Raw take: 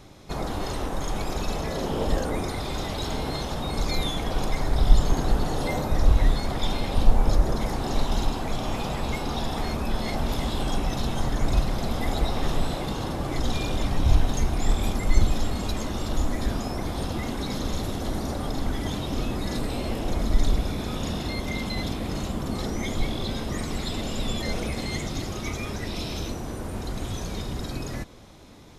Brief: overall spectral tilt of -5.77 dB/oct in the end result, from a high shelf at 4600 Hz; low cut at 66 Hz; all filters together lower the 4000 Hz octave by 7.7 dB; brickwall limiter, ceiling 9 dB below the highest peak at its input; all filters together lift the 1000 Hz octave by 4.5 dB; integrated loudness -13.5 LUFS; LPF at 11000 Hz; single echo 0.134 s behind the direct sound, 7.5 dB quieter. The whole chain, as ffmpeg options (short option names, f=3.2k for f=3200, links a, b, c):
-af "highpass=66,lowpass=11k,equalizer=f=1k:t=o:g=6.5,equalizer=f=4k:t=o:g=-6.5,highshelf=f=4.6k:g=-6.5,alimiter=limit=-21dB:level=0:latency=1,aecho=1:1:134:0.422,volume=17dB"